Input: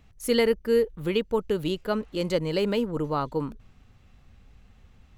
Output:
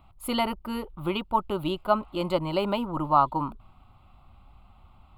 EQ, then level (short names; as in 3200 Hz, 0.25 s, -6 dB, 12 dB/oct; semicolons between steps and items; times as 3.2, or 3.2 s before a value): band shelf 690 Hz +11 dB 2.4 oct; fixed phaser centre 1700 Hz, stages 6; 0.0 dB